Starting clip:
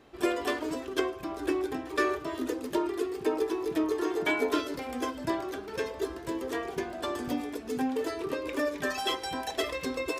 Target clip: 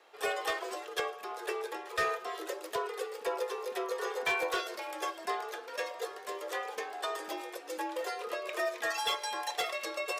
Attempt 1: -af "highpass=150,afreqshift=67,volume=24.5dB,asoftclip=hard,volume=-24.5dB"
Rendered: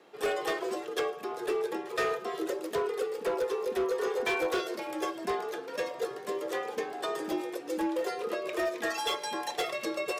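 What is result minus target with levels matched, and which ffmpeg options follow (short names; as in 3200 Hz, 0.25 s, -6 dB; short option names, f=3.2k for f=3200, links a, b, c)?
125 Hz band +6.0 dB
-af "highpass=550,afreqshift=67,volume=24.5dB,asoftclip=hard,volume=-24.5dB"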